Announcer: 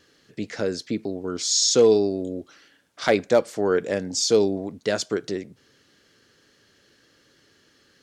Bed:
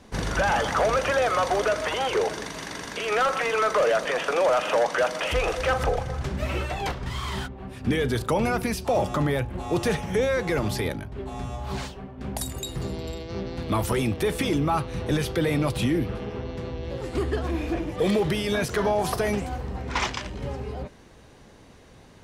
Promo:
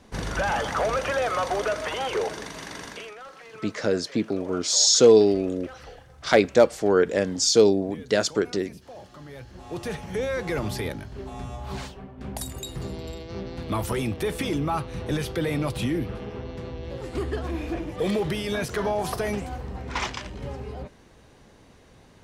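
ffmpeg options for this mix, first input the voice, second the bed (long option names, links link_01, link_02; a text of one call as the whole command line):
ffmpeg -i stem1.wav -i stem2.wav -filter_complex "[0:a]adelay=3250,volume=2dB[link_01];[1:a]volume=15.5dB,afade=type=out:start_time=2.86:duration=0.28:silence=0.125893,afade=type=in:start_time=9.24:duration=1.28:silence=0.125893[link_02];[link_01][link_02]amix=inputs=2:normalize=0" out.wav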